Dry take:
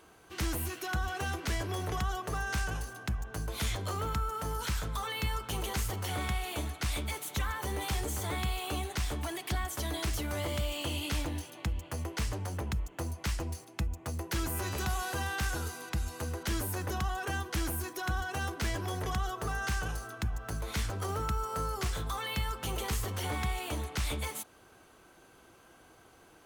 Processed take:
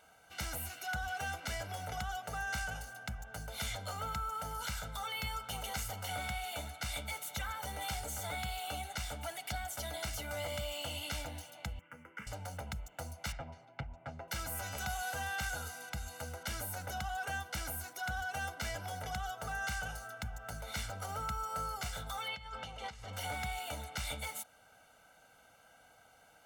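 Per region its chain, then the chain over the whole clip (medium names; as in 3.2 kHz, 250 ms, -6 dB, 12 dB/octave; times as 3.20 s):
11.79–12.27 s: high-pass 84 Hz + three-band isolator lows -21 dB, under 160 Hz, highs -19 dB, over 2.9 kHz + static phaser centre 1.7 kHz, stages 4
13.32–14.28 s: low-pass 2.1 kHz + comb 7.2 ms, depth 72% + loudspeaker Doppler distortion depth 0.6 ms
22.28–23.13 s: band-stop 1.4 kHz, Q 15 + compressor with a negative ratio -39 dBFS + low-pass 4.7 kHz
whole clip: bass shelf 180 Hz -10.5 dB; comb 1.4 ms, depth 90%; trim -5.5 dB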